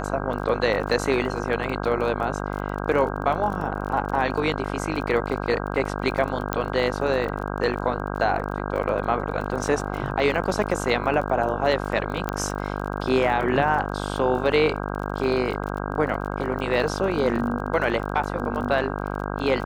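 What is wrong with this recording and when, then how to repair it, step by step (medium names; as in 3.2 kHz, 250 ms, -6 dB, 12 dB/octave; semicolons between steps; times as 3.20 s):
buzz 50 Hz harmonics 32 -29 dBFS
crackle 28 per s -31 dBFS
6.53 s: pop -9 dBFS
12.29 s: pop -12 dBFS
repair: de-click; de-hum 50 Hz, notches 32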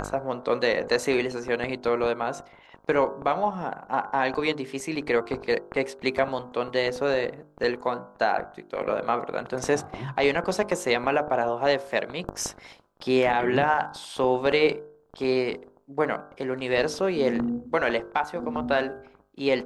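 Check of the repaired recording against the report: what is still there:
12.29 s: pop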